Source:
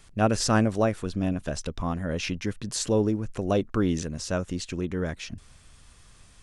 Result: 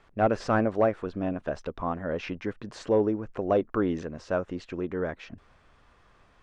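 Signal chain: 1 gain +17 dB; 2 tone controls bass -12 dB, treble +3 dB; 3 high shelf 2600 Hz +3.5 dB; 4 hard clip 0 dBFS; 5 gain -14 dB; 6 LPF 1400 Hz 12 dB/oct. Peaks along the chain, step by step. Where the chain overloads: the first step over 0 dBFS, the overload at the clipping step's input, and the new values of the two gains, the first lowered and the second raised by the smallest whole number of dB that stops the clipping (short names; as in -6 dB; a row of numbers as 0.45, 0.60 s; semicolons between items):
+7.0, +8.0, +8.5, 0.0, -14.0, -13.5 dBFS; step 1, 8.5 dB; step 1 +8 dB, step 5 -5 dB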